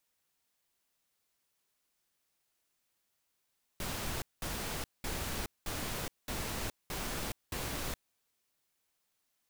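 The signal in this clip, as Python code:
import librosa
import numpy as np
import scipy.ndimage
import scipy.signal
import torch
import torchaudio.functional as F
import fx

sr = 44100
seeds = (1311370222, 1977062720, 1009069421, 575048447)

y = fx.noise_burst(sr, seeds[0], colour='pink', on_s=0.42, off_s=0.2, bursts=7, level_db=-37.5)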